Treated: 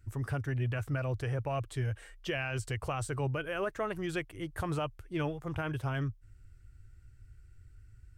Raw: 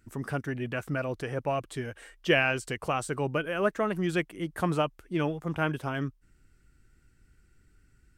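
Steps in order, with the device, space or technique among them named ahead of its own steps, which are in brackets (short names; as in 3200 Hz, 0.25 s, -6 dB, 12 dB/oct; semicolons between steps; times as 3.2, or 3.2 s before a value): car stereo with a boomy subwoofer (resonant low shelf 140 Hz +9.5 dB, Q 3; limiter -21 dBFS, peak gain reduction 10 dB); gain -3.5 dB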